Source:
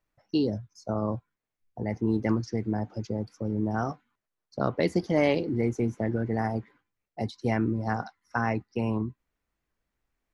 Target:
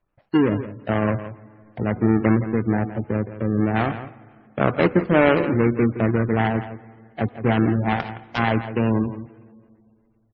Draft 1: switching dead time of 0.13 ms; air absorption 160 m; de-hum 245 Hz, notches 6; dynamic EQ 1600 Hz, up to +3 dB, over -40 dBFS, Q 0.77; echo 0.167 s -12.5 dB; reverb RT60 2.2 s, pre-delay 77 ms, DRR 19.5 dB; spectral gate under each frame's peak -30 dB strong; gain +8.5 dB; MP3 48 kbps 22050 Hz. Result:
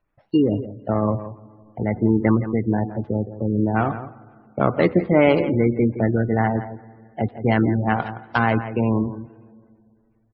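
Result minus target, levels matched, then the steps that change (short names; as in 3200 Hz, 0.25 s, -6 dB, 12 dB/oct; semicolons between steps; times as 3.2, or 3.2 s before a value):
switching dead time: distortion -9 dB
change: switching dead time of 0.31 ms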